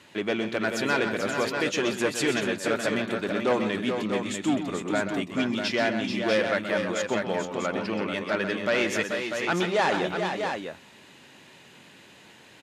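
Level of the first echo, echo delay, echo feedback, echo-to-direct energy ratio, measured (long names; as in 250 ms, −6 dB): −9.5 dB, 128 ms, repeats not evenly spaced, −2.5 dB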